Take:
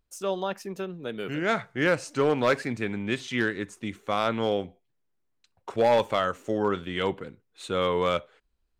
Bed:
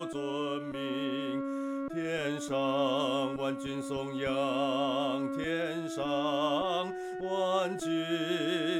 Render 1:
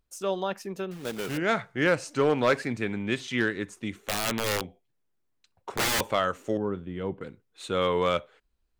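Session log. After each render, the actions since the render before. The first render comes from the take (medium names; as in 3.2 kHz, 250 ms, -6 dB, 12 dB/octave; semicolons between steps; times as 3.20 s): 0.91–1.38 s: block-companded coder 3-bit; 4.02–6.01 s: integer overflow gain 20.5 dB; 6.57–7.21 s: FFT filter 170 Hz 0 dB, 470 Hz -5 dB, 4.8 kHz -21 dB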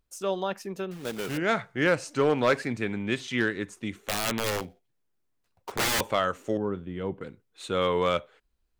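4.50–5.72 s: dead-time distortion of 0.16 ms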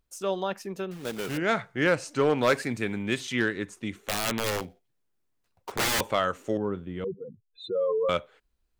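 2.41–3.33 s: treble shelf 8.2 kHz +12 dB; 7.04–8.09 s: spectral contrast enhancement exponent 3.7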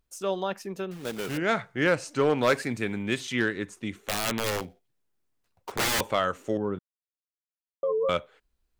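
6.79–7.83 s: mute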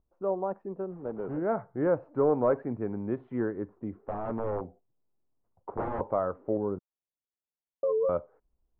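low-pass 1 kHz 24 dB/octave; dynamic bell 160 Hz, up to -4 dB, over -44 dBFS, Q 0.99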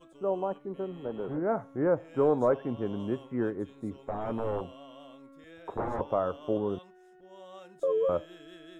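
add bed -19 dB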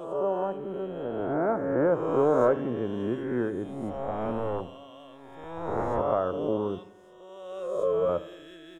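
reverse spectral sustain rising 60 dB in 1.43 s; feedback delay 85 ms, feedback 54%, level -18 dB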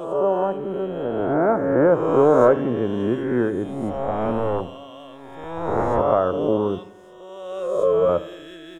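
trim +7.5 dB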